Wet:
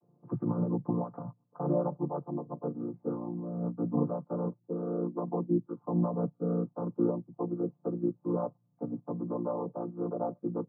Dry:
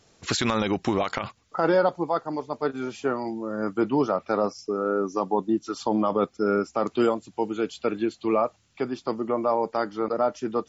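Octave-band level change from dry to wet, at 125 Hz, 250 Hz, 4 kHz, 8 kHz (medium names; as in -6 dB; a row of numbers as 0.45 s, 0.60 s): +3.0 dB, -4.5 dB, under -40 dB, no reading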